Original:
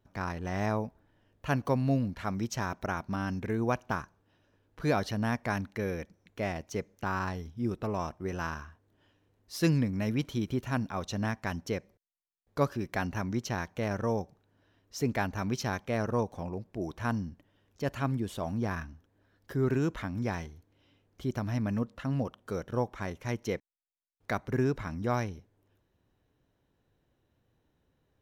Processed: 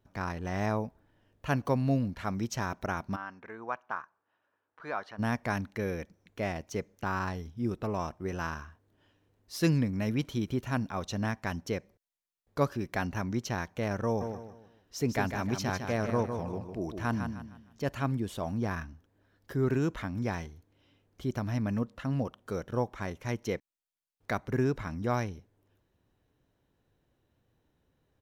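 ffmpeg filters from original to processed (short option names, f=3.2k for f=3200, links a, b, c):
-filter_complex "[0:a]asplit=3[a][b][c];[a]afade=t=out:st=3.15:d=0.02[d];[b]bandpass=f=1.2k:t=q:w=1.5,afade=t=in:st=3.15:d=0.02,afade=t=out:st=5.18:d=0.02[e];[c]afade=t=in:st=5.18:d=0.02[f];[d][e][f]amix=inputs=3:normalize=0,asplit=3[g][h][i];[g]afade=t=out:st=14.2:d=0.02[j];[h]aecho=1:1:154|308|462|616:0.447|0.152|0.0516|0.0176,afade=t=in:st=14.2:d=0.02,afade=t=out:st=17.83:d=0.02[k];[i]afade=t=in:st=17.83:d=0.02[l];[j][k][l]amix=inputs=3:normalize=0"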